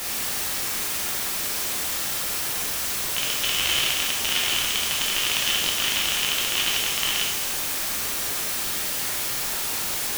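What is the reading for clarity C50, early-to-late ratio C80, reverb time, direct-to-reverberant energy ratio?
0.5 dB, 3.5 dB, 1.1 s, -4.0 dB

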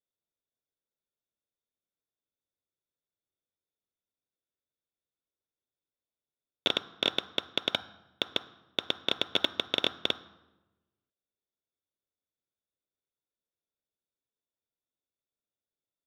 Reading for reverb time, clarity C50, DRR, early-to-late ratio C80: 1.1 s, 15.5 dB, 11.0 dB, 18.0 dB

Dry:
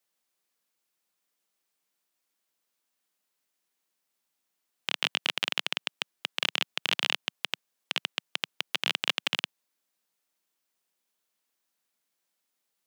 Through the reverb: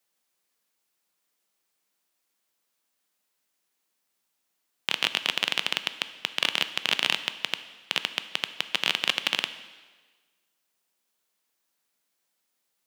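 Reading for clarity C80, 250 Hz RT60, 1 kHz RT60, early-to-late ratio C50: 14.5 dB, 1.3 s, 1.4 s, 13.0 dB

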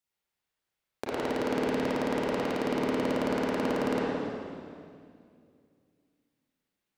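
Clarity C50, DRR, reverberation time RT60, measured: -4.5 dB, -7.5 dB, 2.3 s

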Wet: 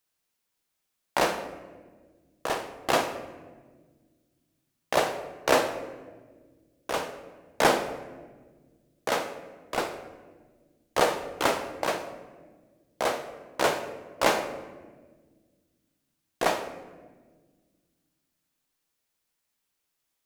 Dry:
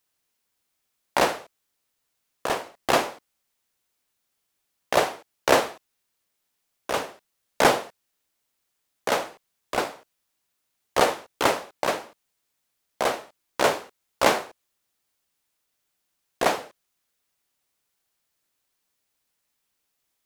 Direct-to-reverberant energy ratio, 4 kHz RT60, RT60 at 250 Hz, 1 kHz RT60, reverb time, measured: 7.5 dB, 0.85 s, 2.5 s, 1.2 s, 1.5 s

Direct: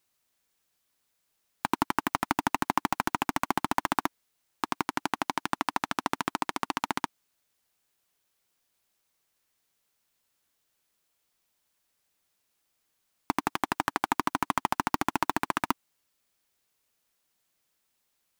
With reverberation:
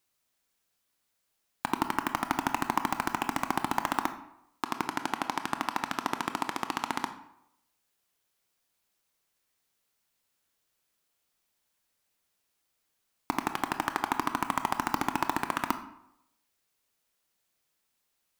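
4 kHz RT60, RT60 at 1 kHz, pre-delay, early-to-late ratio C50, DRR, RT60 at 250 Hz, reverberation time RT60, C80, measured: 0.50 s, 0.80 s, 20 ms, 11.0 dB, 8.0 dB, 0.75 s, 0.80 s, 14.0 dB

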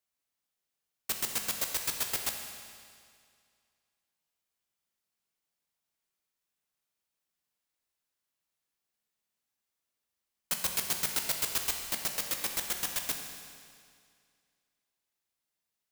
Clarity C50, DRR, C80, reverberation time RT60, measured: 4.5 dB, 3.0 dB, 5.5 dB, 2.2 s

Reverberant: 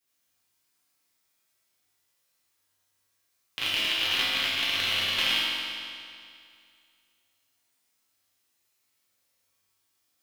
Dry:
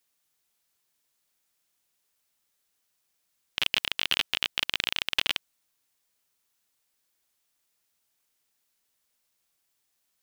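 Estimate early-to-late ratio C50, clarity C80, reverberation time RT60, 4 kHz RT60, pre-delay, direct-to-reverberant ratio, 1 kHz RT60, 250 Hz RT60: -3.5 dB, -1.5 dB, 2.3 s, 2.1 s, 4 ms, -10.0 dB, 2.3 s, 2.3 s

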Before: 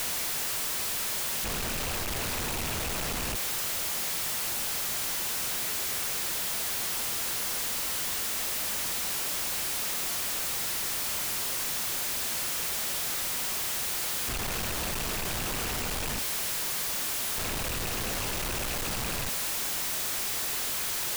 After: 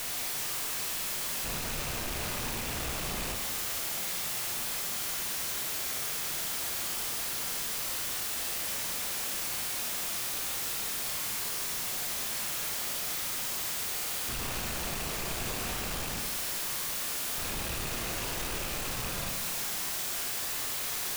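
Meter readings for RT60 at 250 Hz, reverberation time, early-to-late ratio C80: 1.5 s, 1.5 s, 5.0 dB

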